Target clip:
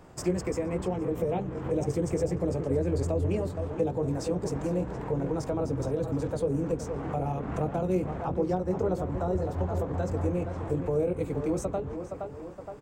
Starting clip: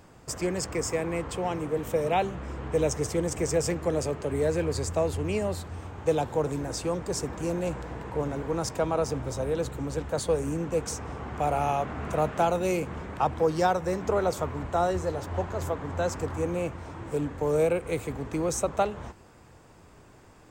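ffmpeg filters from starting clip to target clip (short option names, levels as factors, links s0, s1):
-filter_complex "[0:a]asplit=2[s0][s1];[s1]adelay=22,volume=0.631[s2];[s0][s2]amix=inputs=2:normalize=0,atempo=1.6,tiltshelf=f=1200:g=5,asplit=2[s3][s4];[s4]adelay=468,lowpass=f=1600:p=1,volume=0.316,asplit=2[s5][s6];[s6]adelay=468,lowpass=f=1600:p=1,volume=0.5,asplit=2[s7][s8];[s8]adelay=468,lowpass=f=1600:p=1,volume=0.5,asplit=2[s9][s10];[s10]adelay=468,lowpass=f=1600:p=1,volume=0.5,asplit=2[s11][s12];[s12]adelay=468,lowpass=f=1600:p=1,volume=0.5[s13];[s3][s5][s7][s9][s11][s13]amix=inputs=6:normalize=0,acrossover=split=410[s14][s15];[s15]acompressor=threshold=0.0224:ratio=6[s16];[s14][s16]amix=inputs=2:normalize=0,lowshelf=f=450:g=-4.5"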